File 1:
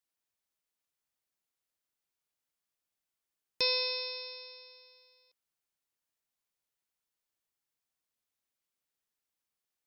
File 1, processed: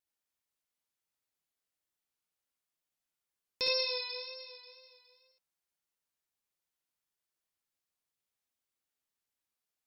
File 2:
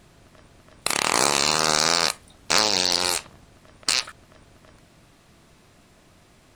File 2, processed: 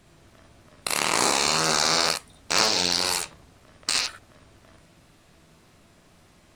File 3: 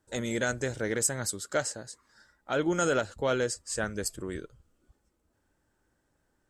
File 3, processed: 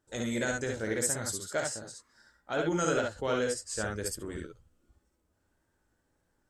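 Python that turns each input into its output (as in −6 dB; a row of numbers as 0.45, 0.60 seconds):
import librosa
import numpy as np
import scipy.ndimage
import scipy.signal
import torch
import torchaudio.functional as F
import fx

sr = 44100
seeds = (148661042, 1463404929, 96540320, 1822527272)

y = fx.wow_flutter(x, sr, seeds[0], rate_hz=2.1, depth_cents=43.0)
y = fx.room_early_taps(y, sr, ms=(18, 56, 68), db=(-11.0, -5.5, -3.5))
y = y * 10.0 ** (-4.0 / 20.0)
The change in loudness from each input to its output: −1.5, −1.5, −1.5 LU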